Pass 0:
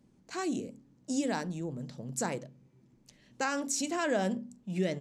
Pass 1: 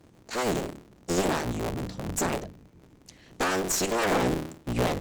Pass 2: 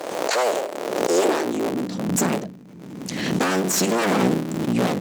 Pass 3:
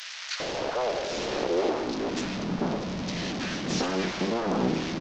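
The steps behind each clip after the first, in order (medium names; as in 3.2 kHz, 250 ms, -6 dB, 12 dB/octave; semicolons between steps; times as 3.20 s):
cycle switcher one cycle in 3, inverted; one-sided clip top -40 dBFS, bottom -23 dBFS; trim +8.5 dB
one-sided wavefolder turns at -29 dBFS; high-pass sweep 570 Hz -> 190 Hz, 0.77–2.17 s; swell ahead of each attack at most 34 dB/s; trim +4 dB
one-bit delta coder 32 kbps, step -19.5 dBFS; bands offset in time highs, lows 400 ms, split 1.5 kHz; trim -6.5 dB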